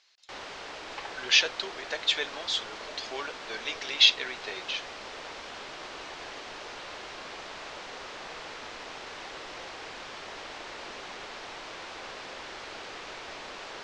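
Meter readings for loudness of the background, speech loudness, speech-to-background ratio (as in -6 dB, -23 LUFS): -40.5 LUFS, -26.5 LUFS, 14.0 dB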